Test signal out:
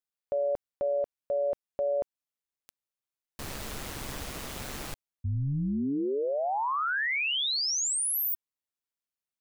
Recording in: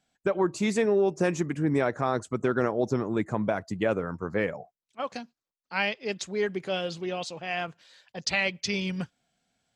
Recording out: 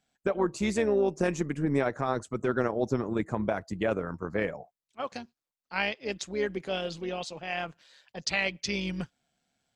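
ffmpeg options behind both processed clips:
-af "tremolo=f=140:d=0.462"

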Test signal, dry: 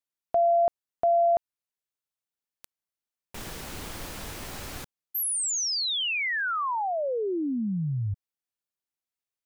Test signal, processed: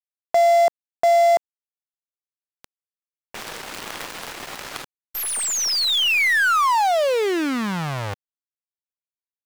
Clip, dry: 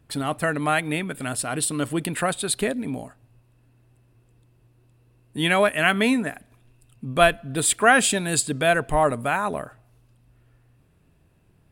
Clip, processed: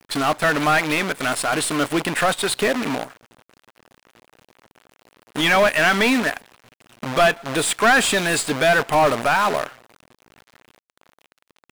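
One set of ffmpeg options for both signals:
-filter_complex "[0:a]acrusher=bits=6:dc=4:mix=0:aa=0.000001,asplit=2[a][b];[b]highpass=f=720:p=1,volume=24dB,asoftclip=type=tanh:threshold=-2dB[c];[a][c]amix=inputs=2:normalize=0,lowpass=f=3.2k:p=1,volume=-6dB,volume=-5dB"

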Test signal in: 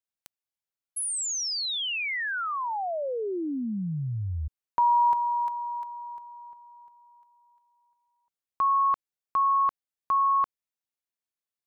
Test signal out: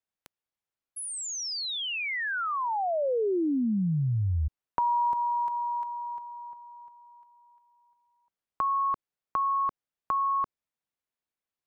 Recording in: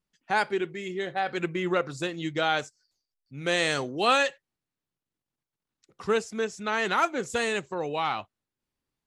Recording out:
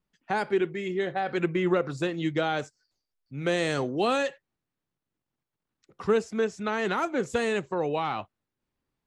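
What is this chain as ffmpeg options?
-filter_complex "[0:a]acrossover=split=490|5000[a][b][c];[b]acompressor=threshold=-32dB:ratio=3:attack=8:release=176:knee=2.83:detection=peak[d];[a][d][c]amix=inputs=3:normalize=0,highshelf=f=3.7k:g=-11,volume=4dB"

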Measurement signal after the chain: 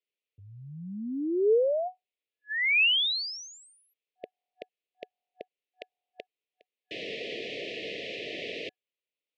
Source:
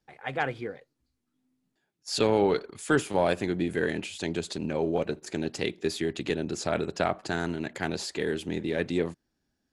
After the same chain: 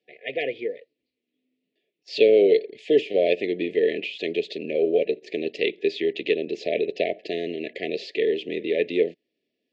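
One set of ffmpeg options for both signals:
-af "afftfilt=real='re*(1-between(b*sr/4096,740,1700))':imag='im*(1-between(b*sr/4096,740,1700))':win_size=4096:overlap=0.75,highpass=420,equalizer=f=440:t=q:w=4:g=7,equalizer=f=740:t=q:w=4:g=-9,equalizer=f=1.7k:t=q:w=4:g=-9,equalizer=f=2.6k:t=q:w=4:g=4,lowpass=f=3.6k:w=0.5412,lowpass=f=3.6k:w=1.3066,volume=6.5dB"

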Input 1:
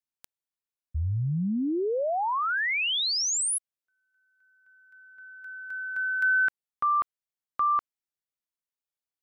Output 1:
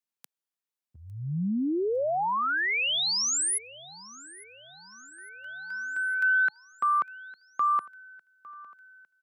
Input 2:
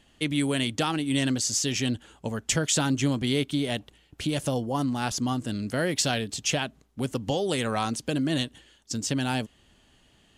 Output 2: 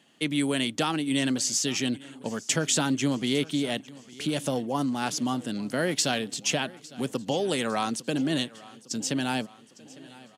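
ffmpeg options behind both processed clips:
-af "highpass=f=150:w=0.5412,highpass=f=150:w=1.3066,aecho=1:1:855|1710|2565|3420|4275:0.0891|0.0517|0.03|0.0174|0.0101"

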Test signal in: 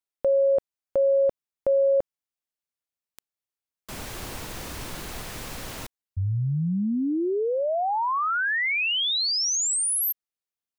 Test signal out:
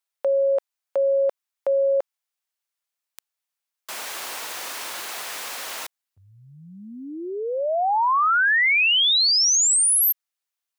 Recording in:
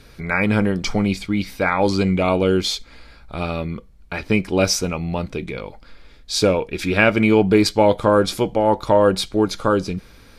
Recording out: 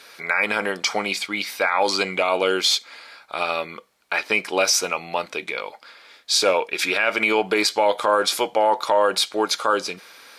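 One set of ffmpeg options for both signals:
-af "highpass=730,alimiter=level_in=14dB:limit=-1dB:release=50:level=0:latency=1,volume=-7.5dB"

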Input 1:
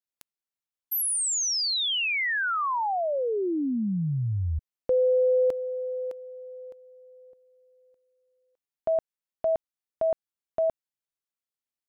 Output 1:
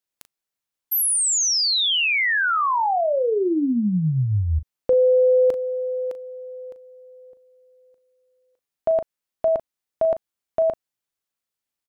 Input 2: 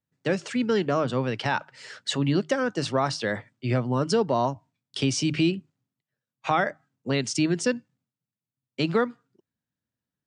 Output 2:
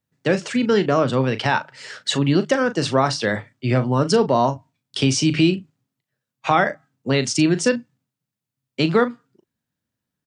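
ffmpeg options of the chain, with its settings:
-filter_complex "[0:a]asplit=2[a][b];[b]adelay=38,volume=-12dB[c];[a][c]amix=inputs=2:normalize=0,volume=6dB"

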